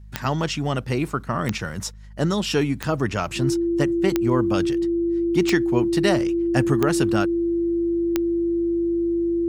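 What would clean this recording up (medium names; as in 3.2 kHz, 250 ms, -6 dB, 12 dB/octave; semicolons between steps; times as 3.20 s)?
de-click; de-hum 51.2 Hz, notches 4; band-stop 340 Hz, Q 30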